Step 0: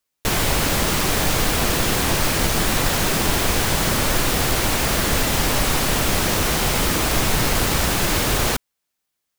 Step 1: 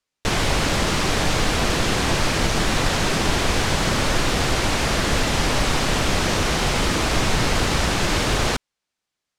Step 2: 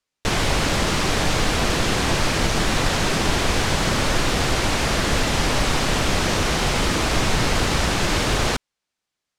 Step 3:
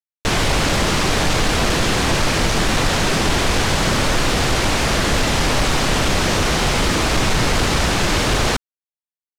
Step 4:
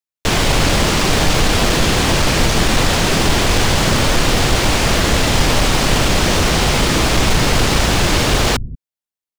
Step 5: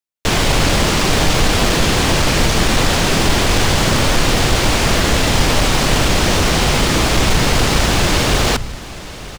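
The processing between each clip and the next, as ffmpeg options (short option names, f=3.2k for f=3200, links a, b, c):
-af "lowpass=6.7k"
-af anull
-af "aeval=exprs='sgn(val(0))*max(abs(val(0))-0.00316,0)':c=same,aeval=exprs='0.531*(cos(1*acos(clip(val(0)/0.531,-1,1)))-cos(1*PI/2))+0.075*(cos(5*acos(clip(val(0)/0.531,-1,1)))-cos(5*PI/2))':c=same"
-filter_complex "[0:a]acrossover=split=200|1300|4500[a][b][c][d];[a]aecho=1:1:180:0.501[e];[b]acrusher=samples=11:mix=1:aa=0.000001[f];[e][f][c][d]amix=inputs=4:normalize=0,volume=3dB"
-af "aecho=1:1:932|1864|2796|3728:0.133|0.0667|0.0333|0.0167"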